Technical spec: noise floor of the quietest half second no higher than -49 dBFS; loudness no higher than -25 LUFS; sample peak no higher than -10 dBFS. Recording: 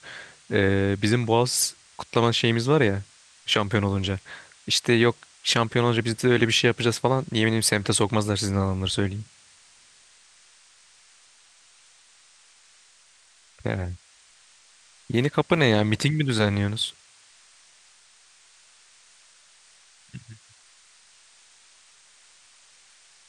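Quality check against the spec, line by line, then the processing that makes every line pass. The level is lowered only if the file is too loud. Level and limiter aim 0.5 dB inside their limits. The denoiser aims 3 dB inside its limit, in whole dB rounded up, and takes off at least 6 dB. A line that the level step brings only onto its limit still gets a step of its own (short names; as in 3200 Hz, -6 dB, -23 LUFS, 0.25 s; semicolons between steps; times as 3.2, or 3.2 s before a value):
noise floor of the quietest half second -57 dBFS: OK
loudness -23.0 LUFS: fail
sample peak -5.5 dBFS: fail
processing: gain -2.5 dB; limiter -10.5 dBFS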